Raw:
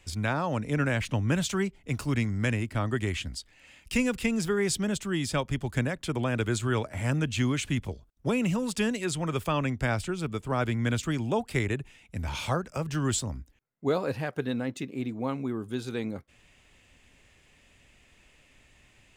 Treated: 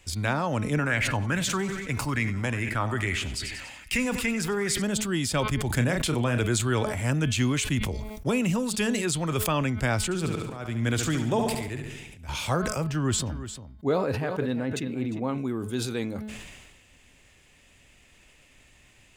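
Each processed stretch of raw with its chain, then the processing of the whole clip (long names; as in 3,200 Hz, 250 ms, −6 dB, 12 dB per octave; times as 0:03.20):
0:00.79–0:04.82: repeating echo 94 ms, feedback 57%, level −16 dB + downward compressor 2.5 to 1, threshold −28 dBFS + auto-filter bell 2.4 Hz 820–2,200 Hz +11 dB
0:05.67–0:06.41: double-tracking delay 33 ms −9.5 dB + level that may fall only so fast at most 31 dB per second
0:10.04–0:12.29: volume swells 418 ms + repeating echo 70 ms, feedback 54%, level −8 dB
0:12.84–0:15.38: high-shelf EQ 3,800 Hz −11 dB + single-tap delay 351 ms −13 dB
whole clip: high-shelf EQ 5,800 Hz +5.5 dB; hum removal 214.3 Hz, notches 22; level that may fall only so fast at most 38 dB per second; level +1.5 dB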